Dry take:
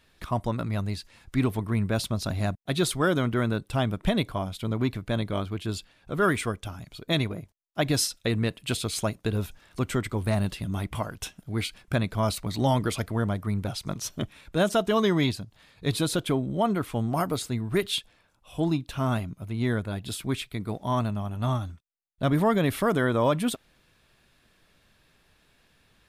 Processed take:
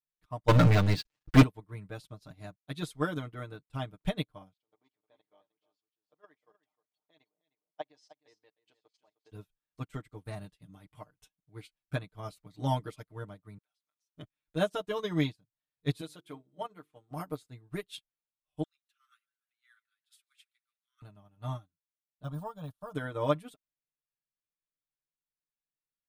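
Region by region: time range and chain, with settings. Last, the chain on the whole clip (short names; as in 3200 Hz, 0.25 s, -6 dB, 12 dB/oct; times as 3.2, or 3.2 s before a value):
0.48–1.43 LPF 4500 Hz + sample leveller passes 5
4.53–9.32 speaker cabinet 470–5900 Hz, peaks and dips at 840 Hz +6 dB, 1400 Hz -9 dB, 2500 Hz -5 dB, 3800 Hz -5 dB + level quantiser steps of 12 dB + echo 0.308 s -7 dB
13.58–14.15 HPF 1500 Hz + compressor, threshold -42 dBFS
16.01–17.11 HPF 330 Hz 6 dB/oct + notches 50/100/150/200/250/300/350/400/450 Hz
18.63–21.02 steep high-pass 1200 Hz 96 dB/oct + frequency-shifting echo 0.148 s, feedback 57%, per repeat +110 Hz, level -18.5 dB
22.23–22.95 gate -31 dBFS, range -6 dB + de-esser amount 95% + fixed phaser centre 850 Hz, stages 4
whole clip: comb 6.6 ms, depth 82%; upward expander 2.5:1, over -42 dBFS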